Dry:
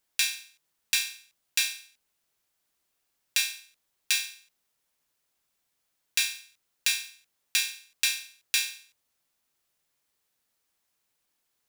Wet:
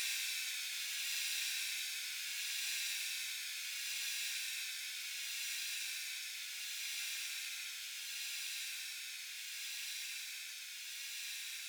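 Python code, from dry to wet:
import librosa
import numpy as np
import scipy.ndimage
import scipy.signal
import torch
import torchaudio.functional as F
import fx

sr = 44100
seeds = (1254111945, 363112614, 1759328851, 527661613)

y = fx.doppler_pass(x, sr, speed_mps=52, closest_m=3.8, pass_at_s=2.88)
y = fx.echo_swell(y, sr, ms=89, loudest=8, wet_db=-4.5)
y = fx.paulstretch(y, sr, seeds[0], factor=16.0, window_s=0.1, from_s=5.64)
y = y * 10.0 ** (2.0 / 20.0)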